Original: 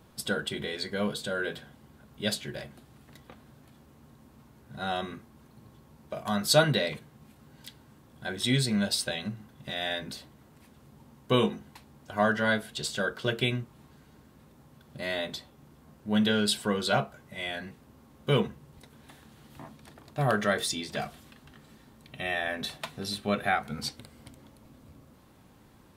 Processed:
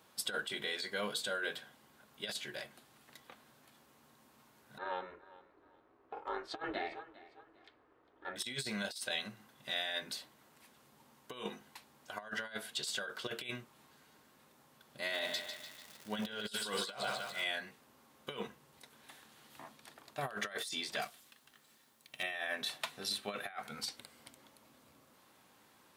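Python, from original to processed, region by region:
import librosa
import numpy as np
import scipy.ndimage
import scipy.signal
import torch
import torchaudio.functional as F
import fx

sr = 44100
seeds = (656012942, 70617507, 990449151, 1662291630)

y = fx.chain(x, sr, fx.lowpass(hz=1600.0, slope=12),
    fx.ring_mod(carrier_hz=180.0),
    fx.echo_feedback(ms=403, feedback_pct=29, wet_db=-19), at=(4.78, 8.36))
y = fx.dmg_crackle(y, sr, seeds[0], per_s=280.0, level_db=-39.0, at=(15.07, 17.43), fade=0.02)
y = fx.echo_split(y, sr, split_hz=890.0, low_ms=102, high_ms=148, feedback_pct=52, wet_db=-7.5, at=(15.07, 17.43), fade=0.02)
y = fx.chain(y, sr, fx.law_mismatch(coded='A'),
    fx.high_shelf(hz=4400.0, db=7.0), at=(21.02, 22.23))
y = fx.highpass(y, sr, hz=990.0, slope=6)
y = fx.over_compress(y, sr, threshold_db=-35.0, ratio=-0.5)
y = F.gain(torch.from_numpy(y), -3.0).numpy()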